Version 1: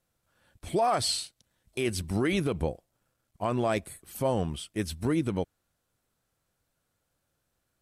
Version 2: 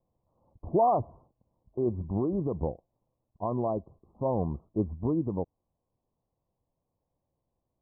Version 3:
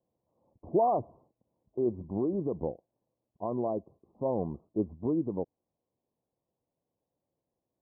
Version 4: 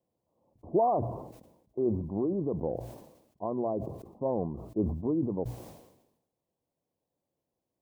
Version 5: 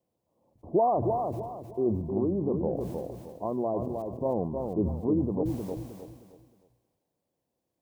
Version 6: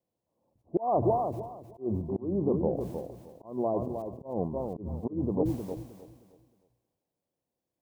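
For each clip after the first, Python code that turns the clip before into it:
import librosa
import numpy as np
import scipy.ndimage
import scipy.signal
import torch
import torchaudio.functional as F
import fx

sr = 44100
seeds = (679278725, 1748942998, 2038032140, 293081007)

y1 = scipy.signal.sosfilt(scipy.signal.butter(16, 1100.0, 'lowpass', fs=sr, output='sos'), x)
y1 = fx.rider(y1, sr, range_db=10, speed_s=0.5)
y2 = fx.bandpass_q(y1, sr, hz=390.0, q=0.72)
y3 = fx.hum_notches(y2, sr, base_hz=60, count=2)
y3 = fx.sustainer(y3, sr, db_per_s=63.0)
y4 = fx.echo_feedback(y3, sr, ms=311, feedback_pct=32, wet_db=-5.0)
y4 = y4 * 10.0 ** (1.5 / 20.0)
y5 = fx.auto_swell(y4, sr, attack_ms=190.0)
y5 = fx.upward_expand(y5, sr, threshold_db=-41.0, expansion=1.5)
y5 = y5 * 10.0 ** (3.0 / 20.0)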